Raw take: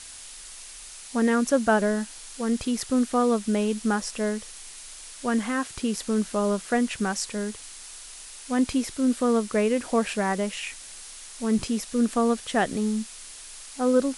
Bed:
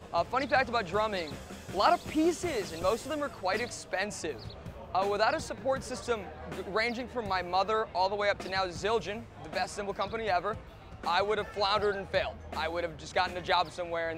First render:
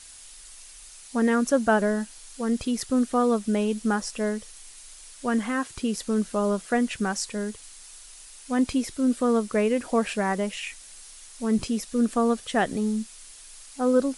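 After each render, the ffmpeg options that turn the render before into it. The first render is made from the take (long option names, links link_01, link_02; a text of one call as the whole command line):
ffmpeg -i in.wav -af "afftdn=noise_reduction=6:noise_floor=-43" out.wav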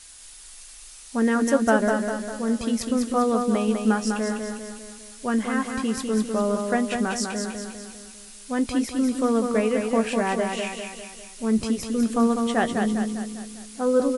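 ffmpeg -i in.wav -filter_complex "[0:a]asplit=2[link_01][link_02];[link_02]adelay=18,volume=-11.5dB[link_03];[link_01][link_03]amix=inputs=2:normalize=0,asplit=2[link_04][link_05];[link_05]aecho=0:1:200|400|600|800|1000|1200:0.562|0.287|0.146|0.0746|0.038|0.0194[link_06];[link_04][link_06]amix=inputs=2:normalize=0" out.wav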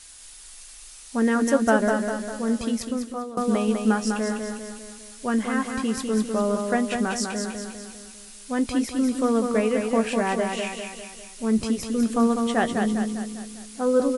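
ffmpeg -i in.wav -filter_complex "[0:a]asplit=2[link_01][link_02];[link_01]atrim=end=3.37,asetpts=PTS-STARTPTS,afade=type=out:start_time=2.61:duration=0.76:silence=0.11885[link_03];[link_02]atrim=start=3.37,asetpts=PTS-STARTPTS,afade=type=in:duration=0.004:curve=hsin:silence=0.11885[link_04];[link_03][link_04]concat=n=2:v=0:a=1" out.wav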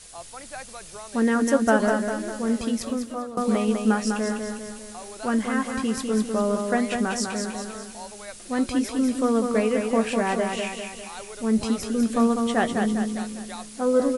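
ffmpeg -i in.wav -i bed.wav -filter_complex "[1:a]volume=-12dB[link_01];[0:a][link_01]amix=inputs=2:normalize=0" out.wav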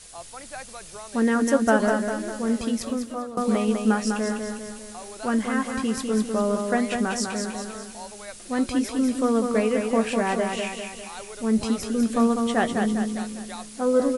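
ffmpeg -i in.wav -af anull out.wav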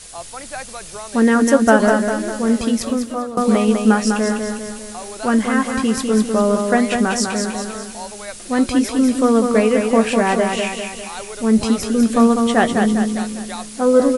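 ffmpeg -i in.wav -af "volume=7.5dB,alimiter=limit=-1dB:level=0:latency=1" out.wav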